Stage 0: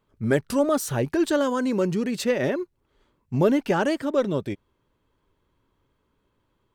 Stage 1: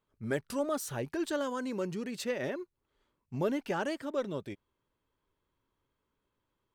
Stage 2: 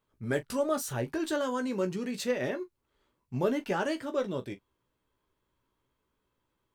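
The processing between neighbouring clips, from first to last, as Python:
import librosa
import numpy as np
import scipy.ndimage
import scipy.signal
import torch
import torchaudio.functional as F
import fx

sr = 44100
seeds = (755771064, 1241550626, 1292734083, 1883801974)

y1 = fx.low_shelf(x, sr, hz=500.0, db=-4.5)
y1 = y1 * 10.0 ** (-8.5 / 20.0)
y2 = fx.room_early_taps(y1, sr, ms=(16, 41), db=(-7.5, -16.0))
y2 = y2 * 10.0 ** (2.0 / 20.0)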